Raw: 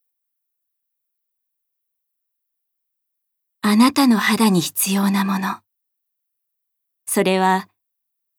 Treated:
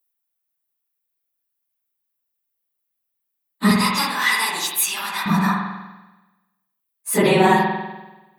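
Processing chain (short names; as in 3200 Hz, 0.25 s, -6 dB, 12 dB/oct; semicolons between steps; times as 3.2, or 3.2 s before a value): phase scrambler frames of 50 ms; 3.71–5.26 HPF 1100 Hz 12 dB/oct; spring tank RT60 1.1 s, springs 48 ms, chirp 45 ms, DRR 0.5 dB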